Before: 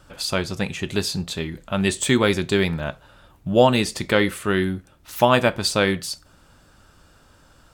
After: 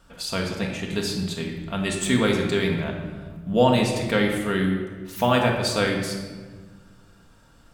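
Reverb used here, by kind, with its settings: shoebox room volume 1400 m³, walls mixed, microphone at 1.7 m; gain -5.5 dB

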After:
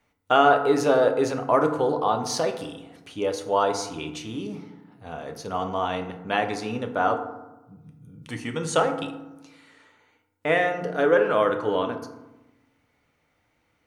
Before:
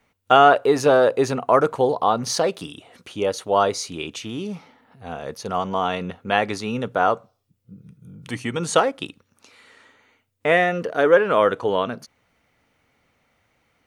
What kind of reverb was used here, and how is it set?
FDN reverb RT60 1 s, low-frequency decay 1.4×, high-frequency decay 0.45×, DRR 5 dB; gain -5 dB

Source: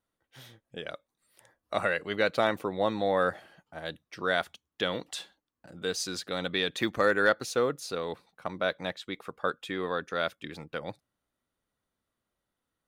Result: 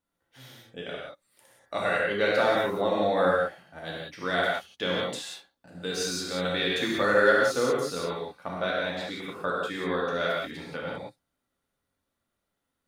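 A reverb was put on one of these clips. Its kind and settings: non-linear reverb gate 0.21 s flat, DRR -5 dB; gain -3 dB

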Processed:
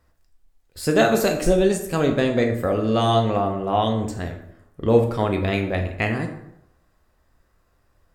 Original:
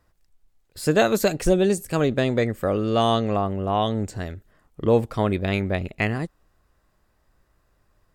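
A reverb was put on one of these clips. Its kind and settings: plate-style reverb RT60 0.79 s, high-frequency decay 0.6×, DRR 3 dB

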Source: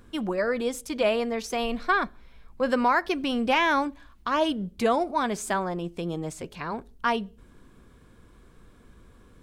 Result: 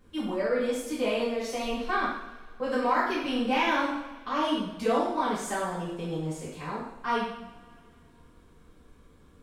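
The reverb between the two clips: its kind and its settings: two-slope reverb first 0.78 s, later 3 s, from -22 dB, DRR -9.5 dB; gain -12.5 dB

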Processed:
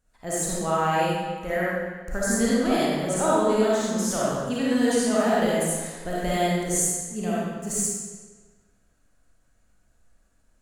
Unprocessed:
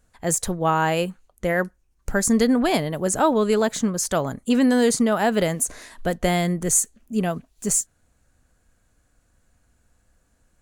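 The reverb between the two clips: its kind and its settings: digital reverb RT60 1.4 s, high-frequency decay 0.9×, pre-delay 15 ms, DRR -8 dB; gain -10.5 dB

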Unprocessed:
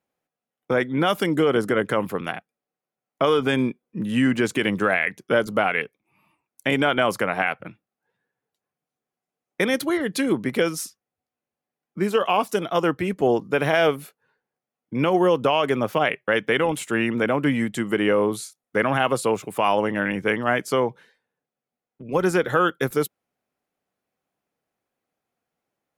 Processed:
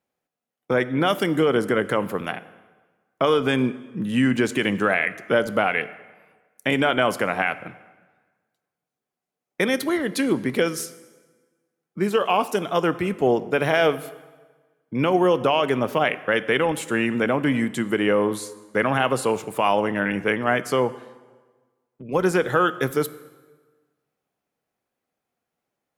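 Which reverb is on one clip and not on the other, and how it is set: plate-style reverb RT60 1.4 s, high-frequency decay 0.8×, DRR 14.5 dB

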